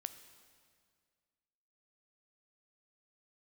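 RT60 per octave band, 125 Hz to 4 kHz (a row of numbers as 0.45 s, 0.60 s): 2.2 s, 2.1 s, 2.1 s, 1.9 s, 1.9 s, 1.8 s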